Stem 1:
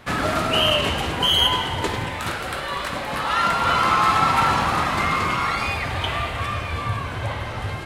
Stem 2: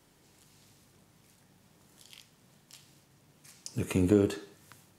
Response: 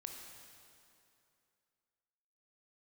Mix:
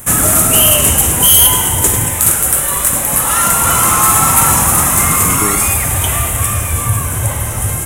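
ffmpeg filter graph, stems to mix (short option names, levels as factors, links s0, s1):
-filter_complex "[0:a]volume=1.26,asplit=2[s0][s1];[s1]volume=0.562[s2];[1:a]adelay=1300,volume=1[s3];[2:a]atrim=start_sample=2205[s4];[s2][s4]afir=irnorm=-1:irlink=0[s5];[s0][s3][s5]amix=inputs=3:normalize=0,lowshelf=f=210:g=9,aexciter=amount=15.6:drive=9.8:freq=7100,asoftclip=type=tanh:threshold=0.891"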